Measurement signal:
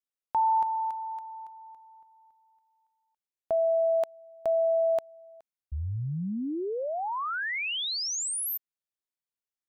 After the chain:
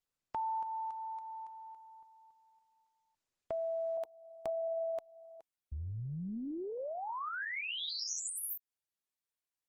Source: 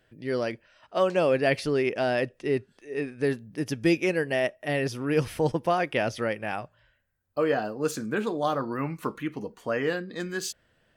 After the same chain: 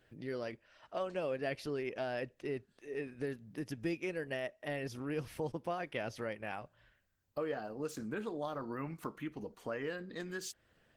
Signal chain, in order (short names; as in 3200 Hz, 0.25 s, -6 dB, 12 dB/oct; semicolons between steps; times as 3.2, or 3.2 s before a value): compressor 2:1, threshold -41 dBFS; gain -2 dB; Opus 16 kbps 48000 Hz